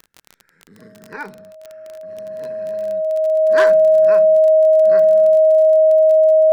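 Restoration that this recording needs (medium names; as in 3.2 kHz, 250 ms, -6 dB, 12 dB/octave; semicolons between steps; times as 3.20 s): de-click; band-stop 630 Hz, Q 30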